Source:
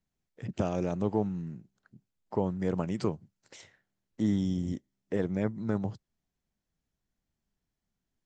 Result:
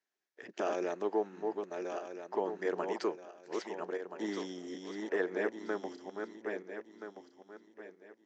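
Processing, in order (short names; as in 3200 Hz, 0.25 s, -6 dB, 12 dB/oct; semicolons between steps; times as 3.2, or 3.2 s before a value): regenerating reverse delay 0.663 s, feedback 51%, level -4 dB; Chebyshev band-pass 360–6300 Hz, order 3; bell 1700 Hz +8 dB 0.3 oct; notch 510 Hz, Q 12; 4.3–5.38 dynamic EQ 1100 Hz, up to +3 dB, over -48 dBFS, Q 0.71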